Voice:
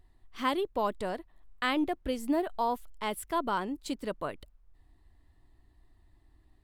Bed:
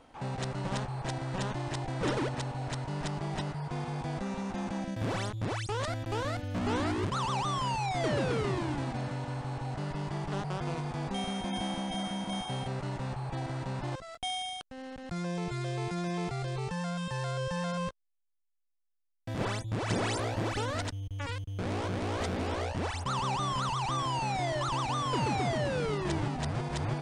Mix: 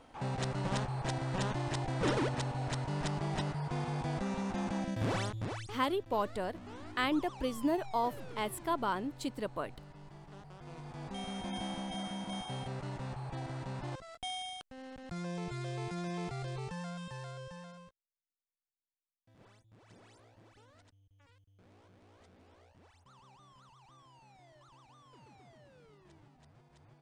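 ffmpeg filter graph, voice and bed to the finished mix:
-filter_complex "[0:a]adelay=5350,volume=-2.5dB[a];[1:a]volume=12dB,afade=t=out:st=5.15:d=0.68:silence=0.141254,afade=t=in:st=10.57:d=0.88:silence=0.237137,afade=t=out:st=16.5:d=1.48:silence=0.0630957[b];[a][b]amix=inputs=2:normalize=0"

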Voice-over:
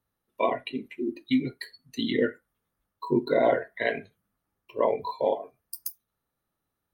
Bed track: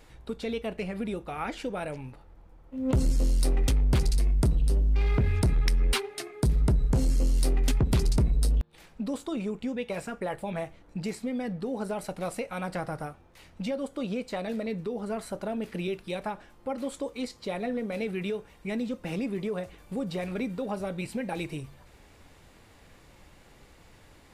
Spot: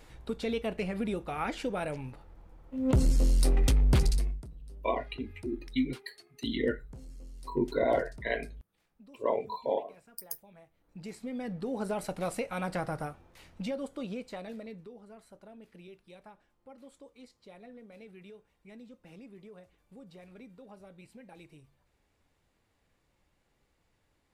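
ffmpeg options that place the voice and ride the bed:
-filter_complex "[0:a]adelay=4450,volume=-5dB[a];[1:a]volume=22.5dB,afade=t=out:st=4.05:d=0.37:silence=0.0707946,afade=t=in:st=10.72:d=1.21:silence=0.0749894,afade=t=out:st=13.04:d=2:silence=0.11885[b];[a][b]amix=inputs=2:normalize=0"

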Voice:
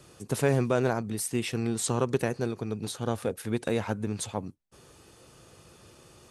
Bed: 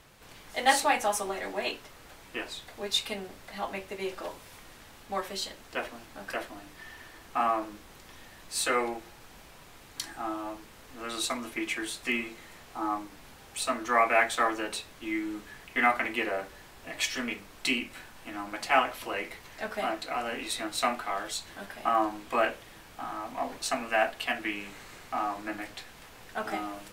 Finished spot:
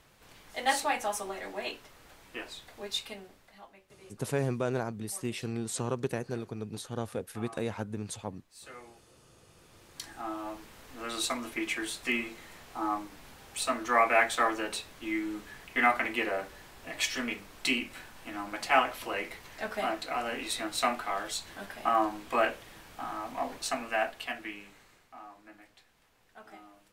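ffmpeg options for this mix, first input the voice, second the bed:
-filter_complex "[0:a]adelay=3900,volume=-5.5dB[a];[1:a]volume=16dB,afade=t=out:st=2.8:d=0.91:silence=0.149624,afade=t=in:st=9.42:d=1.21:silence=0.0944061,afade=t=out:st=23.35:d=1.75:silence=0.141254[b];[a][b]amix=inputs=2:normalize=0"

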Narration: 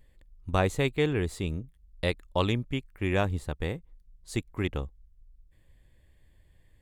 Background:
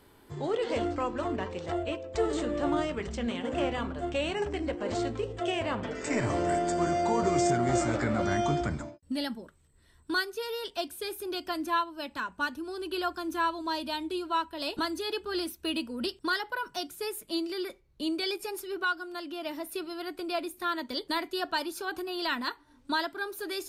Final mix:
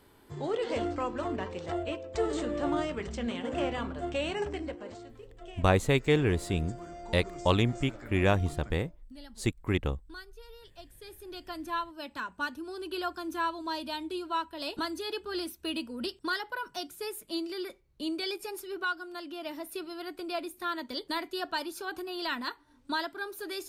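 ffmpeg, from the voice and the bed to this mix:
-filter_complex "[0:a]adelay=5100,volume=1.5dB[a];[1:a]volume=13dB,afade=t=out:st=4.46:d=0.53:silence=0.16788,afade=t=in:st=10.84:d=1.35:silence=0.188365[b];[a][b]amix=inputs=2:normalize=0"

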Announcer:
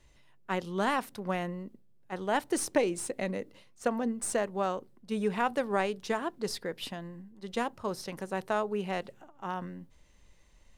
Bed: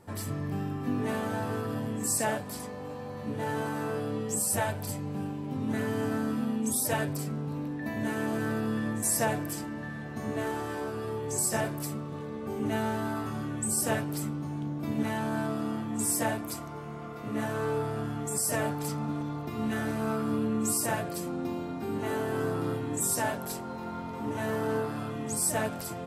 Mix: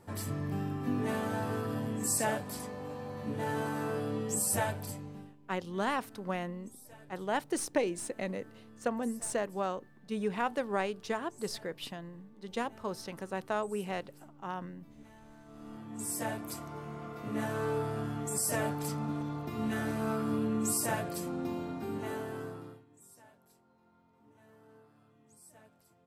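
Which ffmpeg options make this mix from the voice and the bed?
-filter_complex "[0:a]adelay=5000,volume=-3dB[a];[1:a]volume=20.5dB,afade=t=out:st=4.62:d=0.74:silence=0.0707946,afade=t=in:st=15.45:d=1.33:silence=0.0749894,afade=t=out:st=21.69:d=1.16:silence=0.0446684[b];[a][b]amix=inputs=2:normalize=0"

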